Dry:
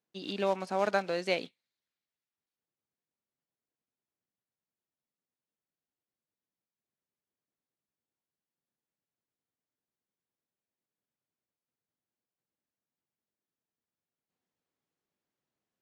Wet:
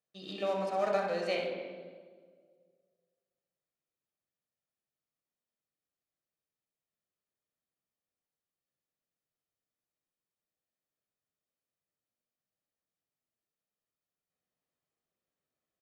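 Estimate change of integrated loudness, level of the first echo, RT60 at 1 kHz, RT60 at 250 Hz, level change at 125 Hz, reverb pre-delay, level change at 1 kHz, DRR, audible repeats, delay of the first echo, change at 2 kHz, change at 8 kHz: -1.5 dB, -7.0 dB, 1.4 s, 2.0 s, -2.5 dB, 3 ms, -1.5 dB, 0.0 dB, 1, 63 ms, -4.0 dB, -4.5 dB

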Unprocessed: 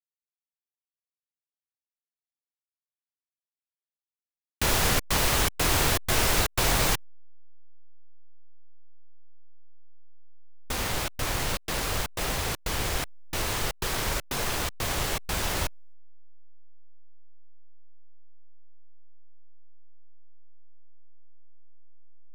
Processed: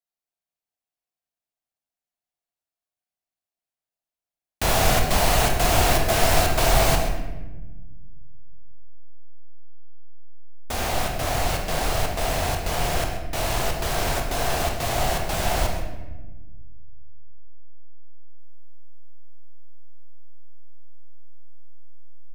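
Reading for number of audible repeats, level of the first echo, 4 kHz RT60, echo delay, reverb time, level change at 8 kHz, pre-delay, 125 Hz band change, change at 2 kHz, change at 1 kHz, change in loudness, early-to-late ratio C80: 1, -13.0 dB, 0.75 s, 0.131 s, 1.2 s, +1.5 dB, 24 ms, +5.5 dB, +2.5 dB, +7.0 dB, +3.5 dB, 6.0 dB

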